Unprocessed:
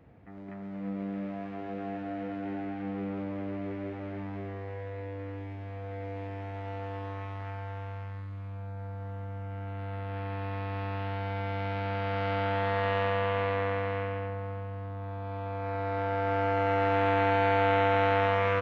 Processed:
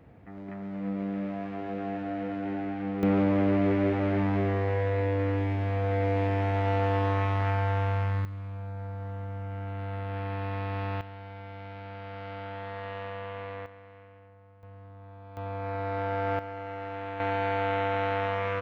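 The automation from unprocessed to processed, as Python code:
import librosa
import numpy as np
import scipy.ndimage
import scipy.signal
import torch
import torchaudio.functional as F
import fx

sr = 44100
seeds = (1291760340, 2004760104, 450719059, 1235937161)

y = fx.gain(x, sr, db=fx.steps((0.0, 3.0), (3.03, 11.5), (8.25, 2.0), (11.01, -9.5), (13.66, -19.5), (14.63, -10.0), (15.37, 0.0), (16.39, -11.0), (17.2, -3.5)))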